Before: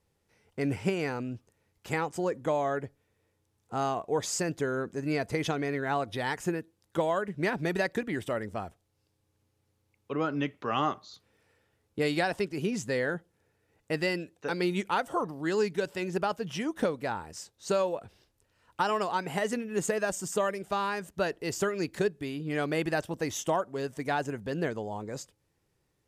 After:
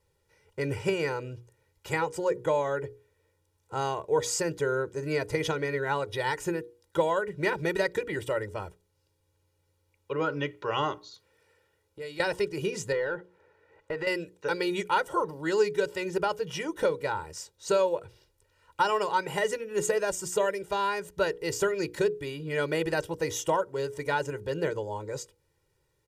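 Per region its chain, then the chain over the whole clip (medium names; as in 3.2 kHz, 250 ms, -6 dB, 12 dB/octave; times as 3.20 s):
11.08–12.20 s: bass shelf 82 Hz -10 dB + compression 2:1, threshold -49 dBFS
12.92–14.07 s: treble shelf 3.2 kHz -11.5 dB + compression 12:1, threshold -36 dBFS + overdrive pedal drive 19 dB, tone 2 kHz, clips at -20 dBFS
whole clip: hum notches 60/120/180/240/300/360/420/480 Hz; comb 2.1 ms, depth 81%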